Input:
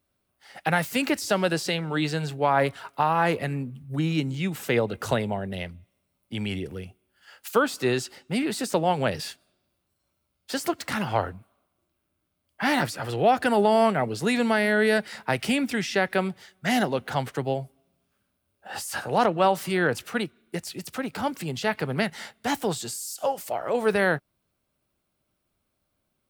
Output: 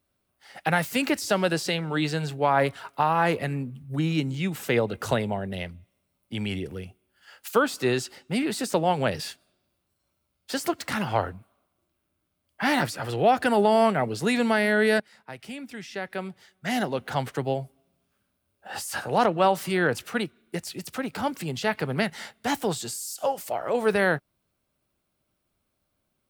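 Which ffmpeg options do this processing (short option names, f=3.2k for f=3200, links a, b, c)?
-filter_complex "[0:a]asplit=2[a][b];[a]atrim=end=15,asetpts=PTS-STARTPTS,afade=t=out:st=14.996:d=0.004:c=hsin:silence=0.158489[c];[b]atrim=start=15,asetpts=PTS-STARTPTS,afade=t=in:d=2.24:c=qua:silence=0.158489[d];[c][d]concat=n=2:v=0:a=1"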